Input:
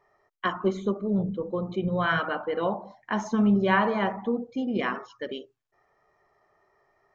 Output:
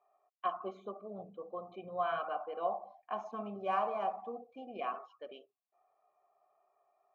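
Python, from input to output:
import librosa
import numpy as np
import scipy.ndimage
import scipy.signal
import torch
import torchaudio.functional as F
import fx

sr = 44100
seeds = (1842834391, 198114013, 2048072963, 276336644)

y = fx.median_filter(x, sr, points=9, at=(3.31, 4.6))
y = fx.vowel_filter(y, sr, vowel='a')
y = F.gain(torch.from_numpy(y), 1.0).numpy()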